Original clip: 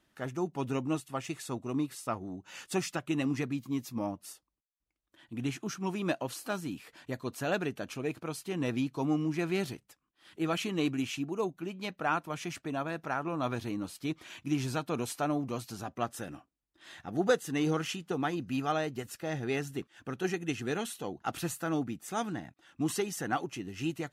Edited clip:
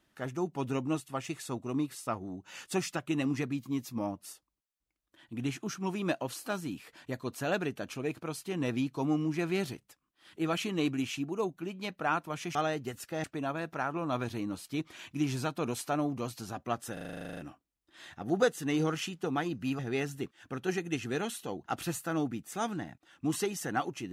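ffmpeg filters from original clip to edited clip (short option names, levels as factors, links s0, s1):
-filter_complex "[0:a]asplit=15[s0][s1][s2][s3][s4][s5][s6][s7][s8][s9][s10][s11][s12][s13][s14];[s0]atrim=end=12.552[s15];[s1]atrim=start=18.658:end=19.352[s16];[s2]atrim=start=12.548:end=16.282[s17];[s3]atrim=start=16.238:end=16.282[s18];[s4]atrim=start=16.238:end=16.282[s19];[s5]atrim=start=16.238:end=16.282[s20];[s6]atrim=start=16.238:end=16.282[s21];[s7]atrim=start=16.238:end=16.282[s22];[s8]atrim=start=16.238:end=16.282[s23];[s9]atrim=start=16.238:end=16.282[s24];[s10]atrim=start=16.238:end=16.282[s25];[s11]atrim=start=16.238:end=16.282[s26];[s12]atrim=start=16.238:end=16.282[s27];[s13]atrim=start=16.238:end=18.662[s28];[s14]atrim=start=19.348[s29];[s15][s16]acrossfade=d=0.004:c1=hsin:c2=hsin[s30];[s30][s17]acrossfade=d=0.004:c1=hsin:c2=hsin[s31];[s31][s18]acrossfade=d=0.004:c1=hsin:c2=hsin[s32];[s32][s19]acrossfade=d=0.004:c1=hsin:c2=hsin[s33];[s33][s20]acrossfade=d=0.004:c1=hsin:c2=hsin[s34];[s34][s21]acrossfade=d=0.004:c1=hsin:c2=hsin[s35];[s35][s22]acrossfade=d=0.004:c1=hsin:c2=hsin[s36];[s36][s23]acrossfade=d=0.004:c1=hsin:c2=hsin[s37];[s37][s24]acrossfade=d=0.004:c1=hsin:c2=hsin[s38];[s38][s25]acrossfade=d=0.004:c1=hsin:c2=hsin[s39];[s39][s26]acrossfade=d=0.004:c1=hsin:c2=hsin[s40];[s40][s27]acrossfade=d=0.004:c1=hsin:c2=hsin[s41];[s41][s28]acrossfade=d=0.004:c1=hsin:c2=hsin[s42];[s42][s29]acrossfade=d=0.004:c1=hsin:c2=hsin"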